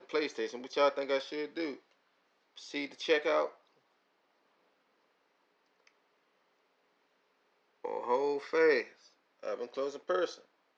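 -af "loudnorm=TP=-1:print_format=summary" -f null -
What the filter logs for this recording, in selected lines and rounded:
Input Integrated:    -33.0 LUFS
Input True Peak:     -14.4 dBTP
Input LRA:             3.7 LU
Input Threshold:     -44.1 LUFS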